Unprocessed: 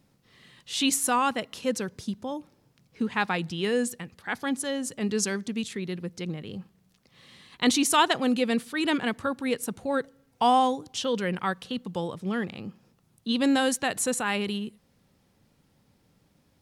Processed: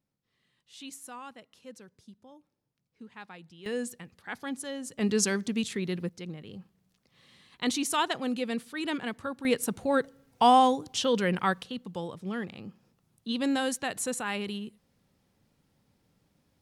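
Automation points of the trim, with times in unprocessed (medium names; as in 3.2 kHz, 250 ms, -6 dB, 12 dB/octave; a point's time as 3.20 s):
-19.5 dB
from 3.66 s -7 dB
from 4.99 s +1 dB
from 6.09 s -6.5 dB
from 9.45 s +1.5 dB
from 11.63 s -5 dB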